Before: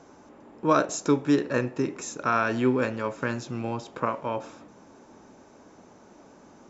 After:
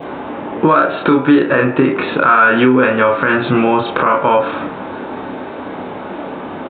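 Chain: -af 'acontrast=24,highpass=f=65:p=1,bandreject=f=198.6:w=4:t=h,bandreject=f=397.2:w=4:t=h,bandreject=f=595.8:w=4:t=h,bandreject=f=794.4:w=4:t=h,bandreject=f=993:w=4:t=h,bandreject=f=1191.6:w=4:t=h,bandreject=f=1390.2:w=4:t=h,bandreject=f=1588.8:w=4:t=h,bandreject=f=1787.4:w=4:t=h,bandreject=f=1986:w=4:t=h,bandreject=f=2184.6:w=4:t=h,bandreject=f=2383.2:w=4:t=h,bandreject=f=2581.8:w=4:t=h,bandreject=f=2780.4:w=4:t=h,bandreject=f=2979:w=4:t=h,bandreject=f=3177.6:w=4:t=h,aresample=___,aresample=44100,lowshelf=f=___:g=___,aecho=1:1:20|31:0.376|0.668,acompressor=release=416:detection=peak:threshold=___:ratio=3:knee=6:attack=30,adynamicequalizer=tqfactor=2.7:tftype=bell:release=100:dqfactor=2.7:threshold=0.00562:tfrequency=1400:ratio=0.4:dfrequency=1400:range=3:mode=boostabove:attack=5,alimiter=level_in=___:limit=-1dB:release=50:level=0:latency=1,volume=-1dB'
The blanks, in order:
8000, 320, -5, -32dB, 22dB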